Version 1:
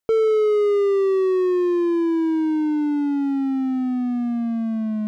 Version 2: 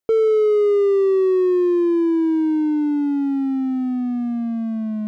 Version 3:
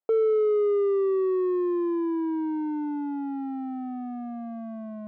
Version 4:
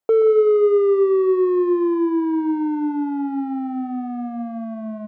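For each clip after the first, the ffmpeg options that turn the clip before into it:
-af "equalizer=f=360:t=o:w=1.3:g=5,volume=-2.5dB"
-af "bandpass=f=780:t=q:w=1.4:csg=0"
-af "aecho=1:1:127|177:0.2|0.15,volume=7dB"

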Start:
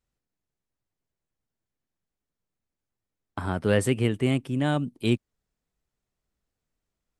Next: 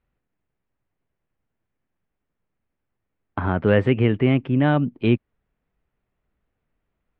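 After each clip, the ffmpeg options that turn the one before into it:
-filter_complex "[0:a]asplit=2[a][b];[b]alimiter=limit=-19dB:level=0:latency=1:release=84,volume=-1.5dB[c];[a][c]amix=inputs=2:normalize=0,lowpass=f=2.7k:w=0.5412,lowpass=f=2.7k:w=1.3066,volume=2.5dB"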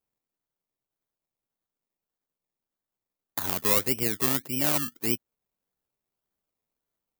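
-af "acrusher=samples=23:mix=1:aa=0.000001:lfo=1:lforange=13.8:lforate=1.7,aemphasis=mode=production:type=bsi,volume=-8.5dB"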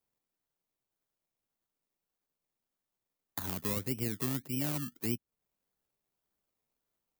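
-filter_complex "[0:a]acrossover=split=260[a][b];[b]acompressor=threshold=-38dB:ratio=2.5[c];[a][c]amix=inputs=2:normalize=0"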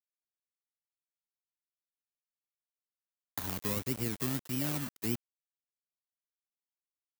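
-af "acrusher=bits=6:mix=0:aa=0.000001"

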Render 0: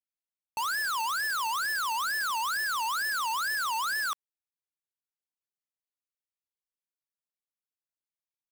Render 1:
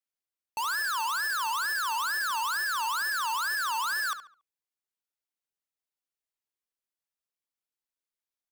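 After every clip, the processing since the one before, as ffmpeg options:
-filter_complex "[0:a]equalizer=f=130:w=1.6:g=-8.5,asplit=2[a][b];[b]adelay=70,lowpass=f=4k:p=1,volume=-10.5dB,asplit=2[c][d];[d]adelay=70,lowpass=f=4k:p=1,volume=0.34,asplit=2[e][f];[f]adelay=70,lowpass=f=4k:p=1,volume=0.34,asplit=2[g][h];[h]adelay=70,lowpass=f=4k:p=1,volume=0.34[i];[c][e][g][i]amix=inputs=4:normalize=0[j];[a][j]amix=inputs=2:normalize=0"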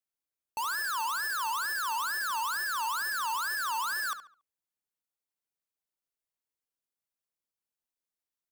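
-af "equalizer=f=2.9k:t=o:w=2.6:g=-4"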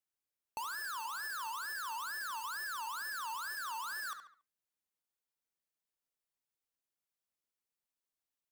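-af "flanger=delay=1.5:depth=7.4:regen=-87:speed=0.38:shape=triangular,acompressor=threshold=-42dB:ratio=6,volume=2.5dB"

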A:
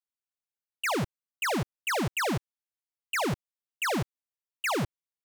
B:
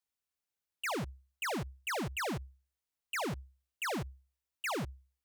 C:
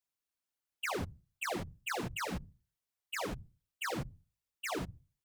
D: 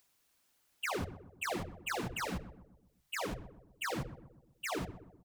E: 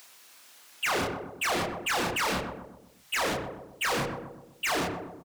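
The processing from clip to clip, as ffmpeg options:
-af "equalizer=f=66:w=5.8:g=11.5,alimiter=level_in=13dB:limit=-24dB:level=0:latency=1:release=43,volume=-13dB,volume=3dB"
-af "afftfilt=real='hypot(re,im)*cos(2*PI*random(0))':imag='hypot(re,im)*sin(2*PI*random(1))':win_size=512:overlap=0.75,volume=4.5dB"
-filter_complex "[0:a]acompressor=mode=upward:threshold=-58dB:ratio=2.5,asplit=2[a][b];[b]adelay=126,lowpass=f=1k:p=1,volume=-12dB,asplit=2[c][d];[d]adelay=126,lowpass=f=1k:p=1,volume=0.52,asplit=2[e][f];[f]adelay=126,lowpass=f=1k:p=1,volume=0.52,asplit=2[g][h];[h]adelay=126,lowpass=f=1k:p=1,volume=0.52,asplit=2[i][j];[j]adelay=126,lowpass=f=1k:p=1,volume=0.52[k];[a][c][e][g][i][k]amix=inputs=6:normalize=0"
-filter_complex "[0:a]asplit=2[a][b];[b]adelay=29,volume=-5dB[c];[a][c]amix=inputs=2:normalize=0,asplit=2[d][e];[e]highpass=f=720:p=1,volume=26dB,asoftclip=type=tanh:threshold=-23dB[f];[d][f]amix=inputs=2:normalize=0,lowpass=f=7.5k:p=1,volume=-6dB,volume=1.5dB"

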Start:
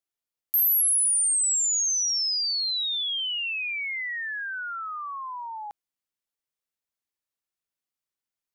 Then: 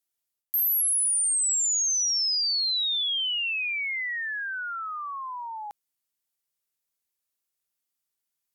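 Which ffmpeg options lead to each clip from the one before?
-af "aemphasis=mode=production:type=cd,areverse,acompressor=threshold=-24dB:ratio=6,areverse"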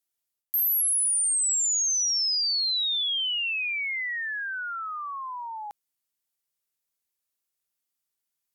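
-af anull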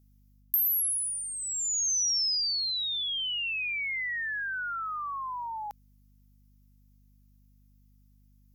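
-af "acompressor=threshold=-30dB:ratio=6,aexciter=amount=1.2:drive=5.2:freq=5k,aeval=exprs='val(0)+0.001*(sin(2*PI*50*n/s)+sin(2*PI*2*50*n/s)/2+sin(2*PI*3*50*n/s)/3+sin(2*PI*4*50*n/s)/4+sin(2*PI*5*50*n/s)/5)':c=same"

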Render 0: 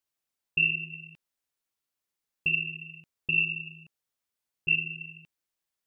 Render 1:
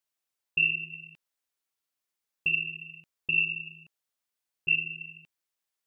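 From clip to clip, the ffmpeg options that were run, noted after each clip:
-af "lowshelf=f=300:g=-6.5"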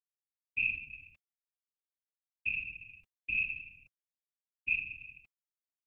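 -af "afreqshift=-140,agate=range=-33dB:threshold=-51dB:ratio=3:detection=peak,afftfilt=real='hypot(re,im)*cos(2*PI*random(0))':imag='hypot(re,im)*sin(2*PI*random(1))':win_size=512:overlap=0.75"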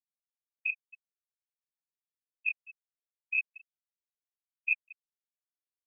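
-filter_complex "[0:a]afftfilt=real='re*gte(hypot(re,im),0.0794)':imag='im*gte(hypot(re,im),0.0794)':win_size=1024:overlap=0.75,acrossover=split=360|980[a][b][c];[b]dynaudnorm=f=230:g=9:m=3dB[d];[a][d][c]amix=inputs=3:normalize=0,afftfilt=real='re*between(b*sr/1024,410*pow(3000/410,0.5+0.5*sin(2*PI*4.5*pts/sr))/1.41,410*pow(3000/410,0.5+0.5*sin(2*PI*4.5*pts/sr))*1.41)':imag='im*between(b*sr/1024,410*pow(3000/410,0.5+0.5*sin(2*PI*4.5*pts/sr))/1.41,410*pow(3000/410,0.5+0.5*sin(2*PI*4.5*pts/sr))*1.41)':win_size=1024:overlap=0.75,volume=3.5dB"

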